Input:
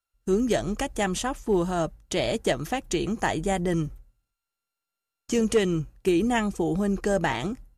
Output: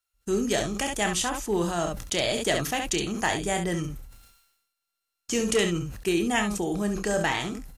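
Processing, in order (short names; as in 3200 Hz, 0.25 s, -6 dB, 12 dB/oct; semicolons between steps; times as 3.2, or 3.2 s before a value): tilt shelf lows -4.5 dB, about 1300 Hz; early reflections 29 ms -10.5 dB, 68 ms -9.5 dB; sustainer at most 59 dB/s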